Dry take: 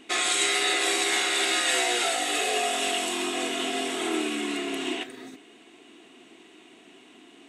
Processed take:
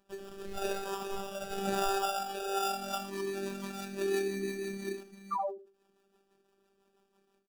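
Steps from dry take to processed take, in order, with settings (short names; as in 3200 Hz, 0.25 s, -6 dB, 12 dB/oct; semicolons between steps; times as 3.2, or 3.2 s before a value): spectral noise reduction 23 dB; in parallel at +2 dB: compressor, threshold -42 dBFS, peak gain reduction 16 dB; on the sum: sample-and-hold 21×; rotary speaker horn 0.9 Hz, later 6 Hz, at 2.3; painted sound fall, 5.31–5.58, 320–1300 Hz -29 dBFS; robotiser 196 Hz; on a send: feedback echo 79 ms, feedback 15%, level -13 dB; on the sum: ending taper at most 140 dB/s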